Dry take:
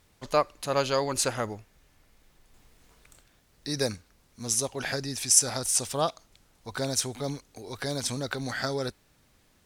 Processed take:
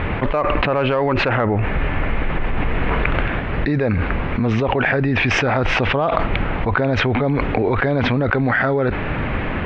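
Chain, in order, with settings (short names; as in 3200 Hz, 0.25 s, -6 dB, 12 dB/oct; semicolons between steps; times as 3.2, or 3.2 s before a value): steep low-pass 2600 Hz 36 dB/oct; in parallel at -7 dB: soft clip -20.5 dBFS, distortion -13 dB; on the sum: fast leveller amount 100%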